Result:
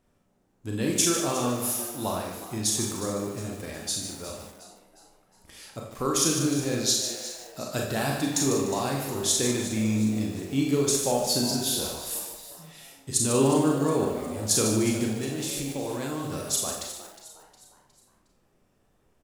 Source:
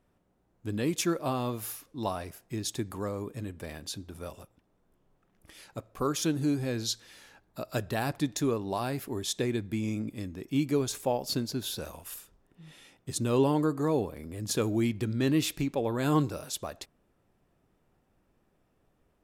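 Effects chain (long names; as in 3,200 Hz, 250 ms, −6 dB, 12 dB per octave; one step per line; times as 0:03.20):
parametric band 7,000 Hz +6 dB 1.4 octaves
four-comb reverb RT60 0.55 s, combs from 29 ms, DRR 0 dB
dynamic equaliser 9,700 Hz, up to +6 dB, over −42 dBFS, Q 0.95
0:15.18–0:16.32: output level in coarse steps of 16 dB
echo with shifted repeats 361 ms, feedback 45%, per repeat +110 Hz, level −14 dB
feedback echo at a low word length 149 ms, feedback 35%, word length 7 bits, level −8 dB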